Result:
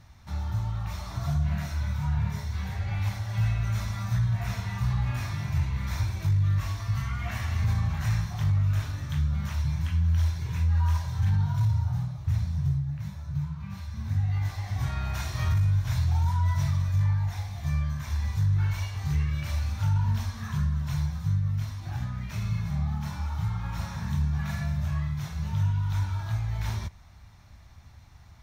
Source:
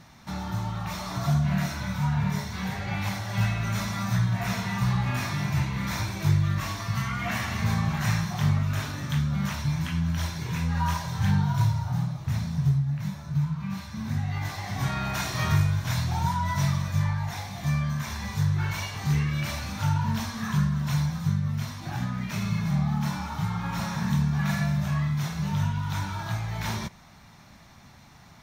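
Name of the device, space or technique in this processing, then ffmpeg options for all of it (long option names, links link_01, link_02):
car stereo with a boomy subwoofer: -af "lowshelf=frequency=120:width_type=q:width=1.5:gain=13,alimiter=limit=-11dB:level=0:latency=1:release=14,volume=-7dB"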